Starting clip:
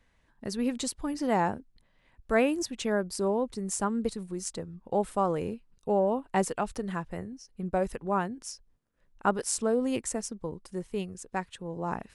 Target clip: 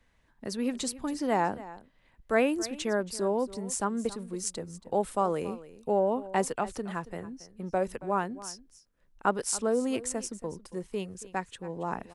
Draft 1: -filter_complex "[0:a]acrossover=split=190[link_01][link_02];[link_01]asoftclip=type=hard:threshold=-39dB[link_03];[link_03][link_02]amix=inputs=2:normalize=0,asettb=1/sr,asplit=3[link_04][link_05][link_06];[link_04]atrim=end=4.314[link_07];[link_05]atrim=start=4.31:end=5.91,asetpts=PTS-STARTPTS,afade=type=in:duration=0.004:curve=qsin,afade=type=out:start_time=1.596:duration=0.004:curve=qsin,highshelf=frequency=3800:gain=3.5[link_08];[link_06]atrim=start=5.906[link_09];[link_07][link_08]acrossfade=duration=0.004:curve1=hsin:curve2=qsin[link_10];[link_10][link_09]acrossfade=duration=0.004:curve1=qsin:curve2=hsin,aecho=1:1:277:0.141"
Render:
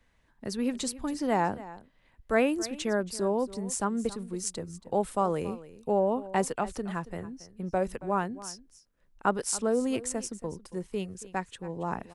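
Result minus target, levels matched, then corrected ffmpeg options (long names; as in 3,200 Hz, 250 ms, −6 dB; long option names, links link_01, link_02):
hard clipping: distortion −7 dB
-filter_complex "[0:a]acrossover=split=190[link_01][link_02];[link_01]asoftclip=type=hard:threshold=-47dB[link_03];[link_03][link_02]amix=inputs=2:normalize=0,asettb=1/sr,asplit=3[link_04][link_05][link_06];[link_04]atrim=end=4.314[link_07];[link_05]atrim=start=4.31:end=5.91,asetpts=PTS-STARTPTS,afade=type=in:duration=0.004:curve=qsin,afade=type=out:start_time=1.596:duration=0.004:curve=qsin,highshelf=frequency=3800:gain=3.5[link_08];[link_06]atrim=start=5.906[link_09];[link_07][link_08]acrossfade=duration=0.004:curve1=hsin:curve2=qsin[link_10];[link_10][link_09]acrossfade=duration=0.004:curve1=qsin:curve2=hsin,aecho=1:1:277:0.141"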